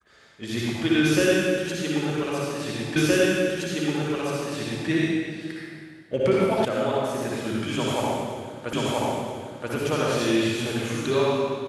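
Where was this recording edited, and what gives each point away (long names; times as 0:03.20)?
0:02.96: the same again, the last 1.92 s
0:06.65: cut off before it has died away
0:08.73: the same again, the last 0.98 s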